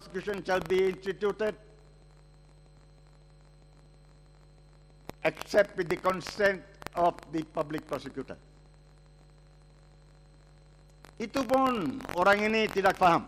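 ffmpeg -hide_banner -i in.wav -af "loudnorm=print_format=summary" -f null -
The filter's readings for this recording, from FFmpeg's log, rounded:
Input Integrated:    -28.3 LUFS
Input True Peak:     -12.4 dBTP
Input LRA:            11.0 LU
Input Threshold:     -40.8 LUFS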